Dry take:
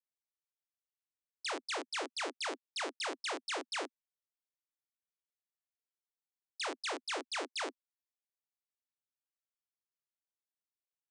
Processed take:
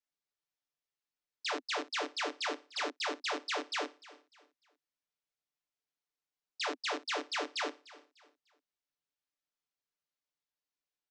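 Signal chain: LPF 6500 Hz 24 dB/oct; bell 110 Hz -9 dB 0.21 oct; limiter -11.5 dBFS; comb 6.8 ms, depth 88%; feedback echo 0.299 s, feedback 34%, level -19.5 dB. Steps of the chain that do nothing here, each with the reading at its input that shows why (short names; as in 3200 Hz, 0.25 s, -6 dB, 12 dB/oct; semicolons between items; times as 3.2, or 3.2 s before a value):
bell 110 Hz: input band starts at 210 Hz; limiter -11.5 dBFS: input peak -26.0 dBFS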